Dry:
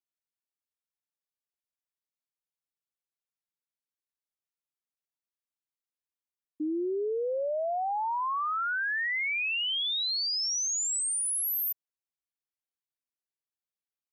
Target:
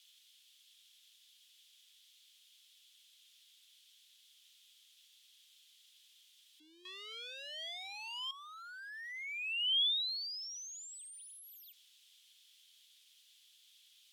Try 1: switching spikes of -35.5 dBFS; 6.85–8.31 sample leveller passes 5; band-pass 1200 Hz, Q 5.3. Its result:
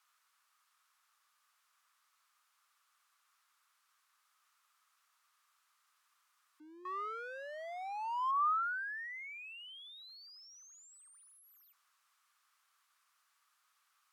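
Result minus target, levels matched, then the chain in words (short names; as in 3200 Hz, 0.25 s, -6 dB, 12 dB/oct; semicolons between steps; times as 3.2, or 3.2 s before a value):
1000 Hz band +19.0 dB
switching spikes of -35.5 dBFS; 6.85–8.31 sample leveller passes 5; band-pass 3300 Hz, Q 5.3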